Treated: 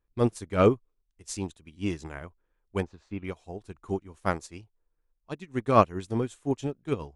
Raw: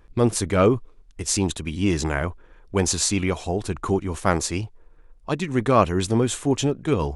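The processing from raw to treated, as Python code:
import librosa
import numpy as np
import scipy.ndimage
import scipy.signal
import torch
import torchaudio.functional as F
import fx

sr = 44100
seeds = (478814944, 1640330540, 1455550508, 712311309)

y = fx.lowpass(x, sr, hz=1800.0, slope=12, at=(2.82, 3.23), fade=0.02)
y = fx.upward_expand(y, sr, threshold_db=-30.0, expansion=2.5)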